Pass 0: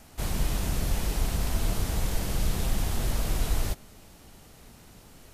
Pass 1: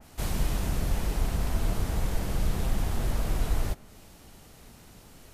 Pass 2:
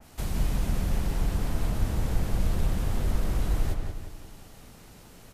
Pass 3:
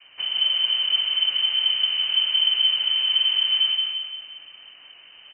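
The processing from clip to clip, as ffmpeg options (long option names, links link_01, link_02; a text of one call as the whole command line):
ffmpeg -i in.wav -af "adynamicequalizer=threshold=0.00224:dfrequency=2400:dqfactor=0.7:tfrequency=2400:tqfactor=0.7:attack=5:release=100:ratio=0.375:range=3:mode=cutabove:tftype=highshelf" out.wav
ffmpeg -i in.wav -filter_complex "[0:a]acrossover=split=350[link_01][link_02];[link_02]acompressor=threshold=-39dB:ratio=6[link_03];[link_01][link_03]amix=inputs=2:normalize=0,asplit=2[link_04][link_05];[link_05]adelay=177,lowpass=frequency=3900:poles=1,volume=-4dB,asplit=2[link_06][link_07];[link_07]adelay=177,lowpass=frequency=3900:poles=1,volume=0.46,asplit=2[link_08][link_09];[link_09]adelay=177,lowpass=frequency=3900:poles=1,volume=0.46,asplit=2[link_10][link_11];[link_11]adelay=177,lowpass=frequency=3900:poles=1,volume=0.46,asplit=2[link_12][link_13];[link_13]adelay=177,lowpass=frequency=3900:poles=1,volume=0.46,asplit=2[link_14][link_15];[link_15]adelay=177,lowpass=frequency=3900:poles=1,volume=0.46[link_16];[link_06][link_08][link_10][link_12][link_14][link_16]amix=inputs=6:normalize=0[link_17];[link_04][link_17]amix=inputs=2:normalize=0" out.wav
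ffmpeg -i in.wav -af "lowpass=frequency=2600:width_type=q:width=0.5098,lowpass=frequency=2600:width_type=q:width=0.6013,lowpass=frequency=2600:width_type=q:width=0.9,lowpass=frequency=2600:width_type=q:width=2.563,afreqshift=-3100,aecho=1:1:224:0.355,volume=2dB" out.wav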